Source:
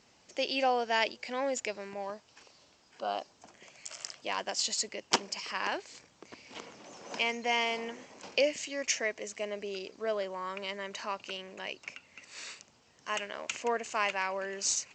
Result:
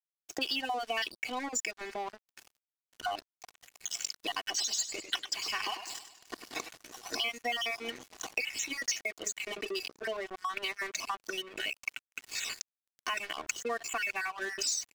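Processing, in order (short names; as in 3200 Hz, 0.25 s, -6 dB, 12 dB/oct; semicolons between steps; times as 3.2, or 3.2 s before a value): random spectral dropouts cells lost 39%; HPF 110 Hz 24 dB/oct; notch 420 Hz, Q 12; spectral gate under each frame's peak -25 dB strong; high shelf 2800 Hz +6.5 dB; comb 2.7 ms, depth 85%; dynamic EQ 560 Hz, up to -6 dB, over -43 dBFS, Q 0.93; sample leveller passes 2; compressor 4:1, threshold -31 dBFS, peak gain reduction 12.5 dB; crossover distortion -47.5 dBFS; 4.38–6.69 warbling echo 0.101 s, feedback 50%, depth 85 cents, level -10 dB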